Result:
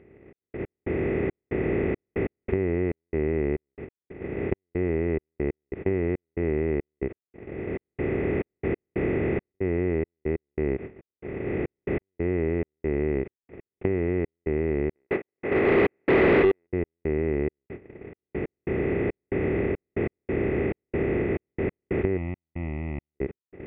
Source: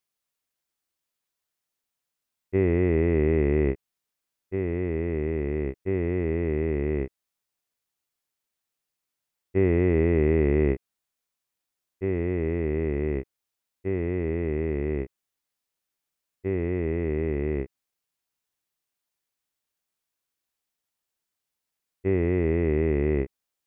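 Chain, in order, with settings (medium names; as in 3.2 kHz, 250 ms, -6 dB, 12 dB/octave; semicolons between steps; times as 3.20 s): spectral levelling over time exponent 0.2; recorder AGC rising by 7.9 dB/s; gate -29 dBFS, range -22 dB; tilt EQ +1.5 dB/octave; band-stop 1 kHz, Q 9.1; compression, threshold -25 dBFS, peak gain reduction 8.5 dB; 22.17–23.15 s: static phaser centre 1.6 kHz, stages 6; trance gate "xxx..x..xxxx..x" 139 bpm -60 dB; 14.95–16.67 s: overdrive pedal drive 28 dB, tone 2.5 kHz, clips at -13.5 dBFS; distance through air 490 m; trim +5 dB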